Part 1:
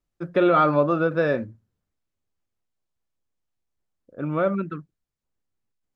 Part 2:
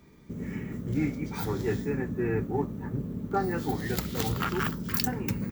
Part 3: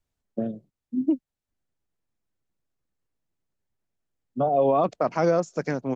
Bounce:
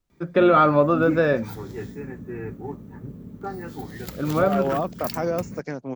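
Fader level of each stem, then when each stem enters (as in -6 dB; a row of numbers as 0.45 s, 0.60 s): +2.0 dB, -5.0 dB, -4.0 dB; 0.00 s, 0.10 s, 0.00 s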